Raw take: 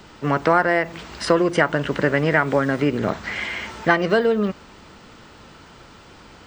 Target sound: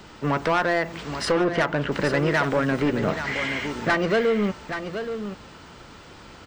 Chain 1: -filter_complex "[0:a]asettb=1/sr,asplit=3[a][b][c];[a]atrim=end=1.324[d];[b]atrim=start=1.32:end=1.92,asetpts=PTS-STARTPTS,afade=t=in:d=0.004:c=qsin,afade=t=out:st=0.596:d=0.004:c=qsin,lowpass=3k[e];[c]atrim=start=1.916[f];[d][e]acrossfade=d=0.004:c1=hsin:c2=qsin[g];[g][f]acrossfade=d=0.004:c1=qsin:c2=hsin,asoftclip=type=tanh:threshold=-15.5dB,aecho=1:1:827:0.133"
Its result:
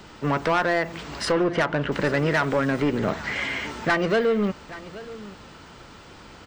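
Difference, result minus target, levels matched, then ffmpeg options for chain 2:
echo-to-direct -8.5 dB
-filter_complex "[0:a]asettb=1/sr,asplit=3[a][b][c];[a]atrim=end=1.324[d];[b]atrim=start=1.32:end=1.92,asetpts=PTS-STARTPTS,afade=t=in:d=0.004:c=qsin,afade=t=out:st=0.596:d=0.004:c=qsin,lowpass=3k[e];[c]atrim=start=1.916[f];[d][e]acrossfade=d=0.004:c1=hsin:c2=qsin[g];[g][f]acrossfade=d=0.004:c1=qsin:c2=hsin,asoftclip=type=tanh:threshold=-15.5dB,aecho=1:1:827:0.355"

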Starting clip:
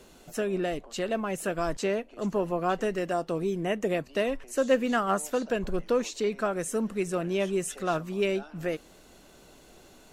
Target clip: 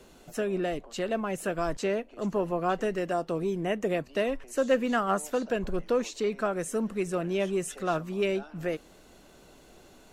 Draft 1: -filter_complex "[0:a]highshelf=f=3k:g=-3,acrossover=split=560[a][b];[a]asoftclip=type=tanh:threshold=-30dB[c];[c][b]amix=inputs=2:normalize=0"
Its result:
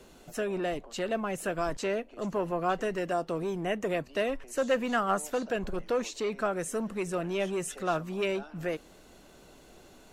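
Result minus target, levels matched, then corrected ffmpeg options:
soft clip: distortion +14 dB
-filter_complex "[0:a]highshelf=f=3k:g=-3,acrossover=split=560[a][b];[a]asoftclip=type=tanh:threshold=-19dB[c];[c][b]amix=inputs=2:normalize=0"

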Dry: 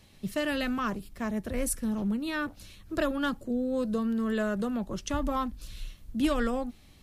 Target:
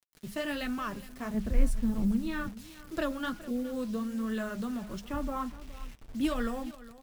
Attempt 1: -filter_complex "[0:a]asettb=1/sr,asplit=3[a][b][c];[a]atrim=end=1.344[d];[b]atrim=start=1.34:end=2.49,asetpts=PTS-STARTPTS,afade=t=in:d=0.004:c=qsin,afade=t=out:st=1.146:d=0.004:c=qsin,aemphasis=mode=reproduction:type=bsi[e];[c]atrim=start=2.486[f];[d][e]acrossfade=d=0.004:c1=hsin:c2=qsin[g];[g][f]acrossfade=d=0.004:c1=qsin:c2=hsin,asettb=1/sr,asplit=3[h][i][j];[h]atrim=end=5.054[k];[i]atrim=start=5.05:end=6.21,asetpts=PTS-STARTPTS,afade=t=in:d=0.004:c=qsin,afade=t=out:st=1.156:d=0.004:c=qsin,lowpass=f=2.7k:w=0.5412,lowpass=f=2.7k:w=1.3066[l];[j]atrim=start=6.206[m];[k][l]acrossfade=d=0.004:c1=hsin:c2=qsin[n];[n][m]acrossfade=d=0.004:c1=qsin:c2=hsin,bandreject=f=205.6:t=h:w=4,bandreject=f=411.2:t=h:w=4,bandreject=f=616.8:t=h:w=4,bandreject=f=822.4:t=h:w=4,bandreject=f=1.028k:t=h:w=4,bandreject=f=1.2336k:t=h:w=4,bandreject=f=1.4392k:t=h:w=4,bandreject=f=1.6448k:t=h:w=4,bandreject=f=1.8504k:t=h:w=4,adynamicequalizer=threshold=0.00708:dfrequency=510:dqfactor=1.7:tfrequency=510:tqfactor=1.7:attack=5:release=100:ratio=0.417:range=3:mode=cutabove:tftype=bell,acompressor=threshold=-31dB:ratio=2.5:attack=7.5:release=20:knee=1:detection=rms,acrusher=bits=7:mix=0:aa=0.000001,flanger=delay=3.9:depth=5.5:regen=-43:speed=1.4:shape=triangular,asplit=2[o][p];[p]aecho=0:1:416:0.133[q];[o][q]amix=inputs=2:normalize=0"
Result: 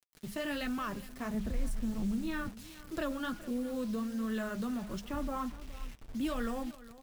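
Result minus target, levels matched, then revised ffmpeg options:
compressor: peak gain reduction +11 dB
-filter_complex "[0:a]asettb=1/sr,asplit=3[a][b][c];[a]atrim=end=1.344[d];[b]atrim=start=1.34:end=2.49,asetpts=PTS-STARTPTS,afade=t=in:d=0.004:c=qsin,afade=t=out:st=1.146:d=0.004:c=qsin,aemphasis=mode=reproduction:type=bsi[e];[c]atrim=start=2.486[f];[d][e]acrossfade=d=0.004:c1=hsin:c2=qsin[g];[g][f]acrossfade=d=0.004:c1=qsin:c2=hsin,asettb=1/sr,asplit=3[h][i][j];[h]atrim=end=5.054[k];[i]atrim=start=5.05:end=6.21,asetpts=PTS-STARTPTS,afade=t=in:d=0.004:c=qsin,afade=t=out:st=1.156:d=0.004:c=qsin,lowpass=f=2.7k:w=0.5412,lowpass=f=2.7k:w=1.3066[l];[j]atrim=start=6.206[m];[k][l]acrossfade=d=0.004:c1=hsin:c2=qsin[n];[n][m]acrossfade=d=0.004:c1=qsin:c2=hsin,bandreject=f=205.6:t=h:w=4,bandreject=f=411.2:t=h:w=4,bandreject=f=616.8:t=h:w=4,bandreject=f=822.4:t=h:w=4,bandreject=f=1.028k:t=h:w=4,bandreject=f=1.2336k:t=h:w=4,bandreject=f=1.4392k:t=h:w=4,bandreject=f=1.6448k:t=h:w=4,bandreject=f=1.8504k:t=h:w=4,adynamicequalizer=threshold=0.00708:dfrequency=510:dqfactor=1.7:tfrequency=510:tqfactor=1.7:attack=5:release=100:ratio=0.417:range=3:mode=cutabove:tftype=bell,acrusher=bits=7:mix=0:aa=0.000001,flanger=delay=3.9:depth=5.5:regen=-43:speed=1.4:shape=triangular,asplit=2[o][p];[p]aecho=0:1:416:0.133[q];[o][q]amix=inputs=2:normalize=0"

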